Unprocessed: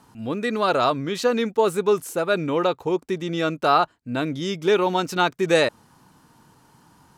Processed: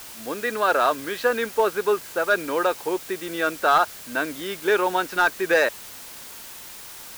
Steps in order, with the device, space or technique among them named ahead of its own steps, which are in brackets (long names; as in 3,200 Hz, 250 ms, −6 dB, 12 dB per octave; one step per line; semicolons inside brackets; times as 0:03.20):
drive-through speaker (band-pass filter 380–3,300 Hz; parametric band 1,600 Hz +11 dB 0.27 octaves; hard clipping −11 dBFS, distortion −19 dB; white noise bed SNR 16 dB)